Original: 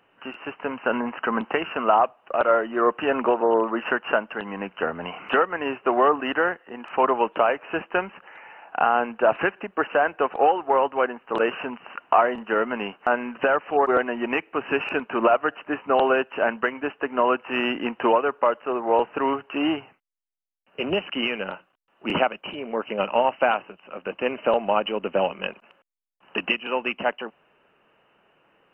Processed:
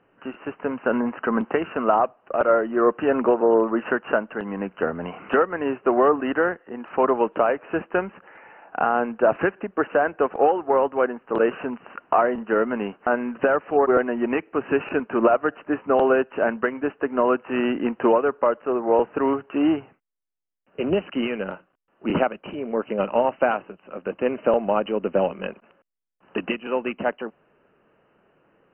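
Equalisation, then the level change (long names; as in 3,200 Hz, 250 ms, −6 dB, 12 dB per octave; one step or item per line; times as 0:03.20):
low-pass filter 1,400 Hz 12 dB per octave
parametric band 890 Hz −7 dB 1.2 octaves
+5.0 dB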